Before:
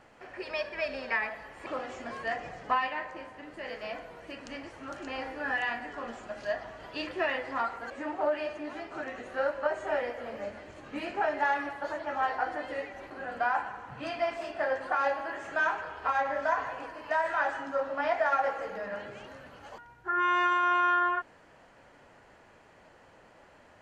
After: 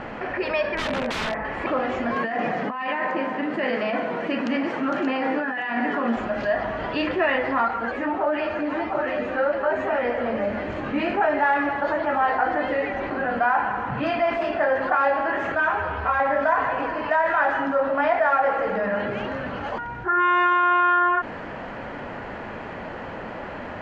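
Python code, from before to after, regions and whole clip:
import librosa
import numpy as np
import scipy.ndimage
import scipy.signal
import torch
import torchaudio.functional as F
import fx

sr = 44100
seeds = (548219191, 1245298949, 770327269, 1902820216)

y = fx.chain(x, sr, fx.lowpass(hz=1800.0, slope=12),
    fx.overflow_wrap(gain_db=33.0), at=(0.75, 1.45))
y = fx.chain(y, sr, fx.over_compress(threshold_db=-39.0, ratio=-1.0),
    fx.highpass(hz=160.0, slope=24),
    fx.peak_eq(hz=240.0, db=4.5, octaves=0.4), at=(2.16, 6.16))
y = fx.chain(y, sr, fx.echo_single(ms=717, db=-6.5),
    fx.ensemble(), at=(7.68, 10.05))
y = fx.chain(y, sr, fx.peak_eq(hz=89.0, db=12.5, octaves=0.95),
    fx.ensemble(), at=(15.52, 16.2))
y = scipy.signal.sosfilt(scipy.signal.butter(2, 2700.0, 'lowpass', fs=sr, output='sos'), y)
y = fx.peak_eq(y, sr, hz=220.0, db=5.5, octaves=0.59)
y = fx.env_flatten(y, sr, amount_pct=50)
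y = y * 10.0 ** (6.0 / 20.0)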